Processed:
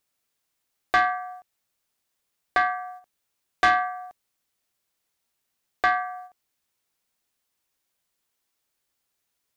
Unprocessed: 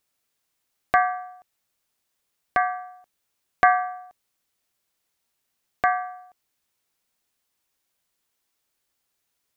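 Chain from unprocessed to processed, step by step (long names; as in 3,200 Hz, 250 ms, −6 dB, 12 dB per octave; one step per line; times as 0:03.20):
noise gate −47 dBFS, range −7 dB
dynamic equaliser 610 Hz, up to −6 dB, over −34 dBFS, Q 0.89
soft clipping −18.5 dBFS, distortion −10 dB
level +5.5 dB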